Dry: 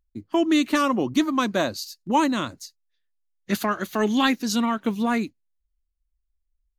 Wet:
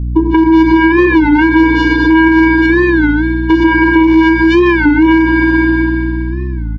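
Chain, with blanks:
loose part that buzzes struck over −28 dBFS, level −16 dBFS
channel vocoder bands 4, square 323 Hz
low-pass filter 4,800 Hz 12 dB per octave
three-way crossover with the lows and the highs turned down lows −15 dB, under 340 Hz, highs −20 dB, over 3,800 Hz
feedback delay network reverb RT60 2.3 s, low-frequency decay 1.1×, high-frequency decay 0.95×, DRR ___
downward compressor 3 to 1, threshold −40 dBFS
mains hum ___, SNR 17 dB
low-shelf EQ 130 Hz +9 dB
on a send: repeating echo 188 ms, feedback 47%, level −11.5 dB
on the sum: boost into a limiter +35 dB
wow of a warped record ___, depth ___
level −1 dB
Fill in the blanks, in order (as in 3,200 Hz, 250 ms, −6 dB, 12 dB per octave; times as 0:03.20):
3 dB, 60 Hz, 33 1/3 rpm, 160 cents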